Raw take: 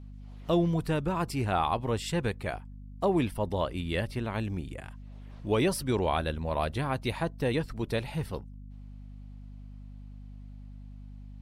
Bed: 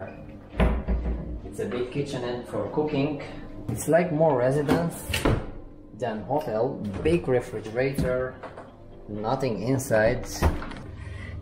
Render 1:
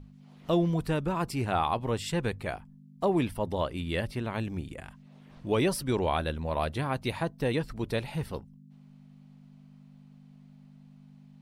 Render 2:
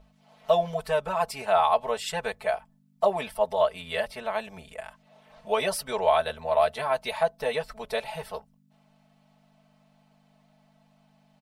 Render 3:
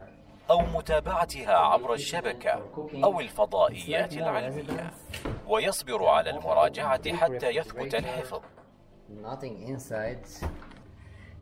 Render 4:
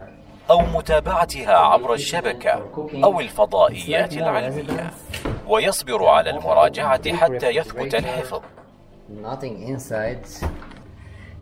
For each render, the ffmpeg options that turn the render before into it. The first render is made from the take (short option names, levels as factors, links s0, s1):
-af "bandreject=f=50:t=h:w=6,bandreject=f=100:t=h:w=6"
-af "lowshelf=f=430:t=q:w=3:g=-11.5,aecho=1:1:4.6:0.99"
-filter_complex "[1:a]volume=0.266[s0];[0:a][s0]amix=inputs=2:normalize=0"
-af "volume=2.51"